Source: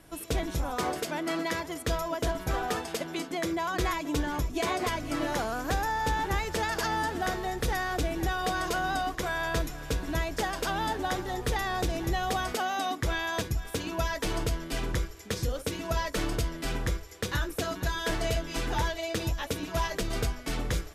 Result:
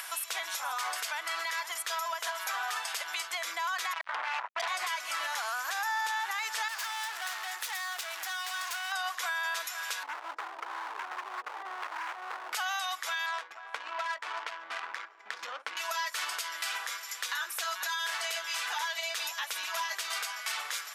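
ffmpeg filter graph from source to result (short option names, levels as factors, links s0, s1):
-filter_complex "[0:a]asettb=1/sr,asplit=3[s0][s1][s2];[s0]atrim=end=3.934[s3];[s1]atrim=start=3.93:end=4.68,asetpts=PTS-STARTPTS,afade=t=in:d=0.004:c=qsin,afade=t=out:st=0.746:d=0.004:c=qsin,lowpass=f=780:t=q:w=5.1,acrusher=bits=3:mix=0:aa=0.5[s4];[s2]atrim=start=4.676[s5];[s3][s4]acrossfade=d=0.004:c1=hsin:c2=qsin[s6];[s6][s5]acrossfade=d=0.004:c1=qsin:c2=hsin,asettb=1/sr,asplit=3[s7][s8][s9];[s7]atrim=end=6.684[s10];[s8]atrim=start=6.68:end=8.92,asetpts=PTS-STARTPTS,afade=t=in:d=0.004:c=qsin,afade=t=out:st=2.236:d=0.004:c=qsin,highpass=330,highshelf=f=8100:g=2.5,aeval=exprs='(tanh(89.1*val(0)+0.8)-tanh(0.8))/89.1':c=same[s11];[s9]atrim=start=8.916[s12];[s10][s11]acrossfade=d=0.004:c1=hsin:c2=qsin[s13];[s13][s12]acrossfade=d=0.004:c1=qsin:c2=hsin,asettb=1/sr,asplit=3[s14][s15][s16];[s14]atrim=end=10.034[s17];[s15]atrim=start=10.03:end=12.53,asetpts=PTS-STARTPTS,afade=t=in:d=0.004:c=qsin,afade=t=out:st=2.496:d=0.004:c=qsin,lowpass=f=320:t=q:w=3.6,aemphasis=mode=production:type=50fm,volume=44.7,asoftclip=hard,volume=0.0224[s18];[s16]atrim=start=12.526[s19];[s17][s18]acrossfade=d=0.004:c1=hsin:c2=qsin[s20];[s20][s19]acrossfade=d=0.004:c1=qsin:c2=hsin,asettb=1/sr,asplit=3[s21][s22][s23];[s21]atrim=end=13.264[s24];[s22]atrim=start=13.26:end=15.77,asetpts=PTS-STARTPTS,afade=t=in:d=0.004:c=qsin,afade=t=out:st=2.506:d=0.004:c=qsin,asubboost=boost=9:cutoff=200,adynamicsmooth=sensitivity=2.5:basefreq=500[s25];[s23]atrim=start=15.766[s26];[s24][s25]acrossfade=d=0.004:c1=hsin:c2=qsin[s27];[s27][s26]acrossfade=d=0.004:c1=qsin:c2=hsin,highpass=f=1000:w=0.5412,highpass=f=1000:w=1.3066,alimiter=level_in=2:limit=0.0631:level=0:latency=1:release=50,volume=0.501,acompressor=mode=upward:threshold=0.0178:ratio=2.5,volume=1.78"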